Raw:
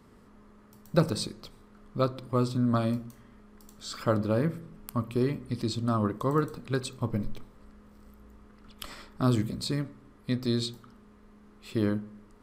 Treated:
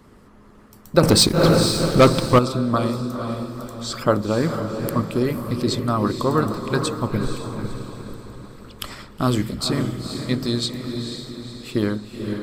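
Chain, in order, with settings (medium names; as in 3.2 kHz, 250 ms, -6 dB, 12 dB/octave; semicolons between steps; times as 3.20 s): echo that smears into a reverb 492 ms, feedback 47%, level -5 dB; harmonic-percussive split percussive +7 dB; 1.03–2.39 s: waveshaping leveller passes 3; trim +3 dB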